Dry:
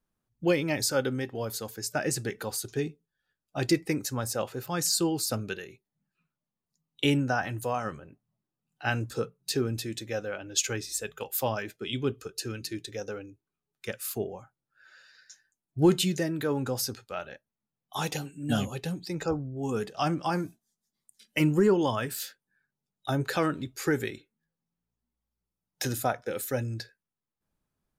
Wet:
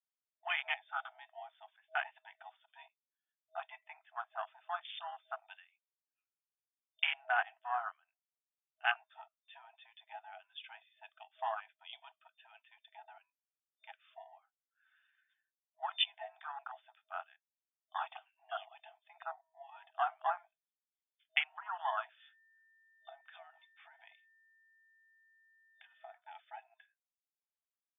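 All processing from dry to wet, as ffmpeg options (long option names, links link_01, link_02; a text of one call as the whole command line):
ffmpeg -i in.wav -filter_complex "[0:a]asettb=1/sr,asplit=3[link_01][link_02][link_03];[link_01]atrim=end=22.204[link_04];[link_02]atrim=start=22.2:end=26.17,asetpts=PTS-STARTPTS,afade=type=in:duration=0.004:curve=qsin,afade=type=out:start_time=3.966:duration=0.004:curve=qsin,acompressor=threshold=-33dB:ratio=16:attack=3.2:release=140:knee=1:detection=peak,aeval=exprs='val(0)+0.00316*sin(2*PI*1800*n/s)':channel_layout=same[link_05];[link_03]atrim=start=26.166[link_06];[link_04][link_05]acrossfade=duration=0.004:curve1=hsin:curve2=qsin[link_07];[link_07][link_06]acrossfade=duration=0.004:curve1=qsin:curve2=hsin,afwtdn=0.0251,afftfilt=real='re*between(b*sr/4096,640,3600)':imag='im*between(b*sr/4096,640,3600)':win_size=4096:overlap=0.75,highshelf=frequency=2700:gain=12,volume=-4dB" out.wav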